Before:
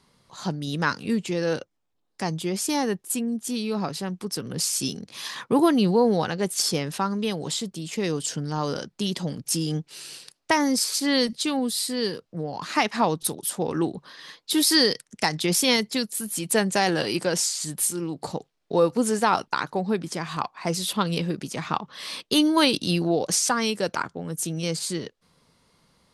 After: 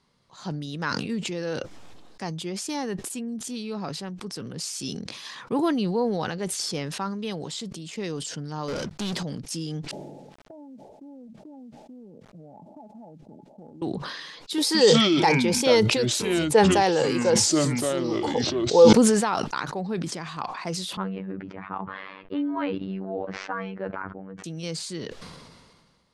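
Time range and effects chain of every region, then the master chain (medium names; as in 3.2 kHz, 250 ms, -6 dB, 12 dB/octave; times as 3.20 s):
8.68–9.23 s: compression 1.5:1, threshold -39 dBFS + hum notches 50/100/150 Hz + waveshaping leveller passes 5
9.91–13.82 s: rippled Chebyshev low-pass 880 Hz, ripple 9 dB + compression 20:1, threshold -36 dBFS + companded quantiser 8-bit
14.58–18.93 s: block-companded coder 7-bit + small resonant body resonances 480/840 Hz, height 14 dB, ringing for 30 ms + ever faster or slower copies 166 ms, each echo -6 st, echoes 2, each echo -6 dB
20.97–24.44 s: low-pass 2 kHz 24 dB/octave + robot voice 95.9 Hz
whole clip: low-pass 7.5 kHz 12 dB/octave; decay stretcher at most 33 dB/s; trim -5.5 dB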